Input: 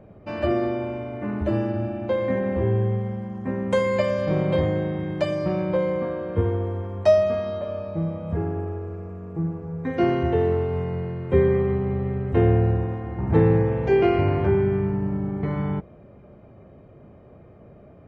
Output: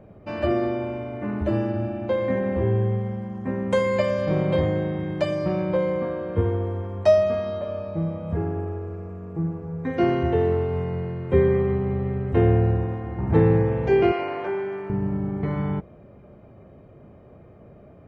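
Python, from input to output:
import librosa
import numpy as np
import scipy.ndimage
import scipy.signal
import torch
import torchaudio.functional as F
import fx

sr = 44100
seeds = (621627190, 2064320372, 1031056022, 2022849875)

y = fx.highpass(x, sr, hz=510.0, slope=12, at=(14.12, 14.9))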